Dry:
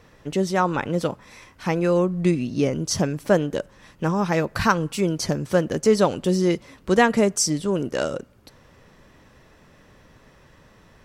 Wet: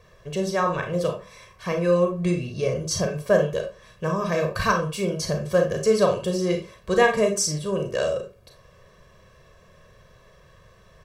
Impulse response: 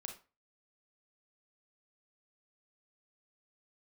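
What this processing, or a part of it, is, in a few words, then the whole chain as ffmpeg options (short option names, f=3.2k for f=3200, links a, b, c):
microphone above a desk: -filter_complex "[0:a]aecho=1:1:1.8:0.9[a];[1:a]atrim=start_sample=2205[b];[a][b]afir=irnorm=-1:irlink=0"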